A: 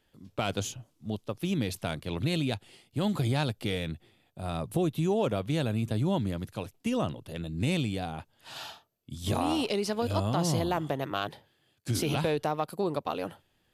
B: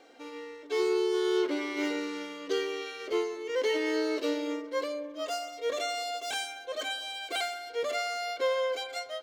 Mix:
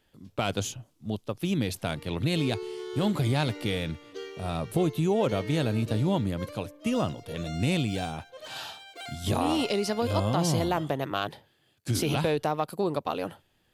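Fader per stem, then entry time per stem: +2.0 dB, -9.5 dB; 0.00 s, 1.65 s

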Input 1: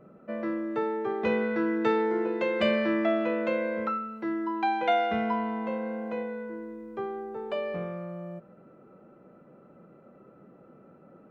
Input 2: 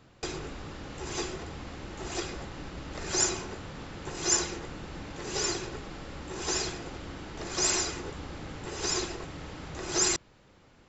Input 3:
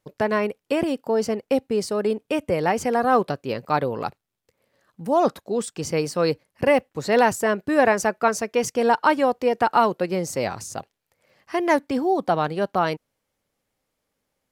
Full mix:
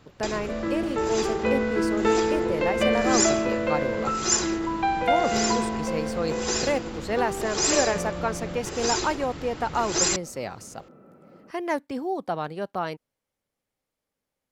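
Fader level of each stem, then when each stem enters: +2.5 dB, +3.0 dB, -7.5 dB; 0.20 s, 0.00 s, 0.00 s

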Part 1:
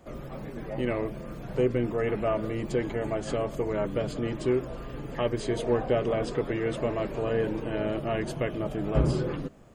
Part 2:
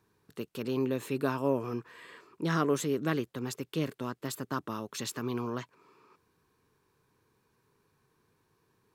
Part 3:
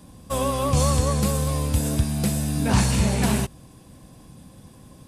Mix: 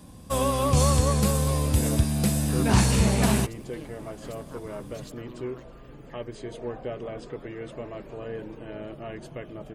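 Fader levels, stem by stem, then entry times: -8.5 dB, -12.0 dB, -0.5 dB; 0.95 s, 0.00 s, 0.00 s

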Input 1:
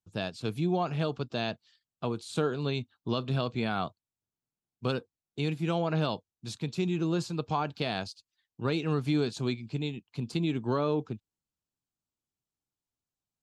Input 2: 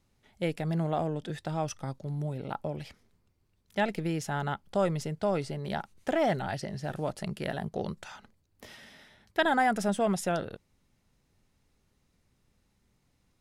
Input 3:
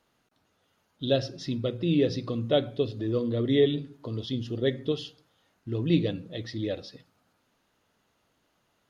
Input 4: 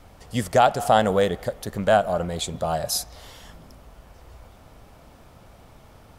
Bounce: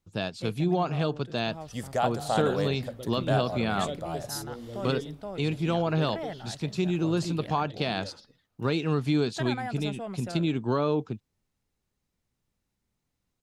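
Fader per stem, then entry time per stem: +2.5 dB, -10.0 dB, -13.0 dB, -10.5 dB; 0.00 s, 0.00 s, 1.35 s, 1.40 s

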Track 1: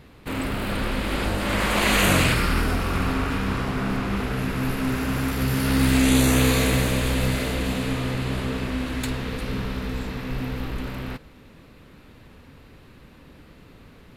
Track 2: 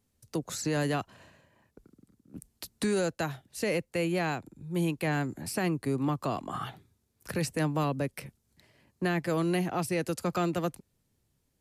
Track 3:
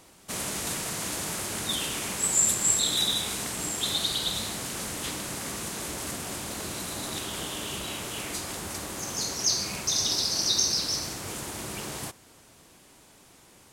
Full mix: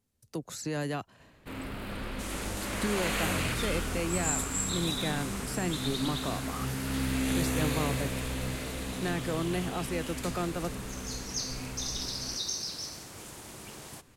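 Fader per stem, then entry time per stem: -11.5 dB, -4.0 dB, -9.5 dB; 1.20 s, 0.00 s, 1.90 s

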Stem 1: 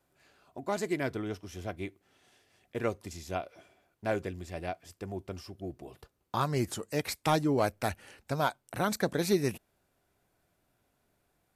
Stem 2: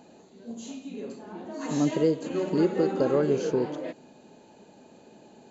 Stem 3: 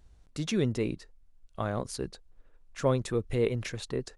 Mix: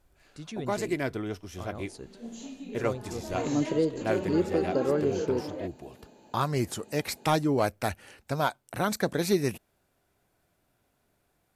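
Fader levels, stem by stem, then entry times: +2.0 dB, -2.5 dB, -9.5 dB; 0.00 s, 1.75 s, 0.00 s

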